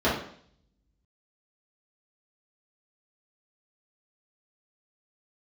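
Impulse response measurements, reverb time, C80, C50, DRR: 0.60 s, 9.0 dB, 4.0 dB, −10.0 dB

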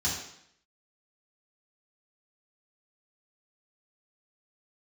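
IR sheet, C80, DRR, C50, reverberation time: 6.5 dB, −8.0 dB, 3.5 dB, 0.70 s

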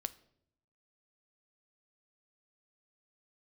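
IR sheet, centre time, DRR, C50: 3 ms, 12.5 dB, 18.5 dB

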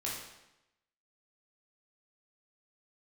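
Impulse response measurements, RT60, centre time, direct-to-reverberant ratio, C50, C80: 0.90 s, 57 ms, −5.5 dB, 1.5 dB, 4.5 dB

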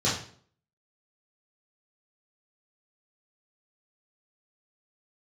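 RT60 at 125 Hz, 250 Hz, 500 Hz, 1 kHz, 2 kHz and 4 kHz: 0.55, 0.60, 0.55, 0.50, 0.45, 0.45 seconds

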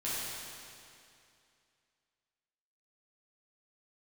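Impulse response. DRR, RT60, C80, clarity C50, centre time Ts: −10.0 dB, 2.5 s, −2.0 dB, −4.0 dB, 171 ms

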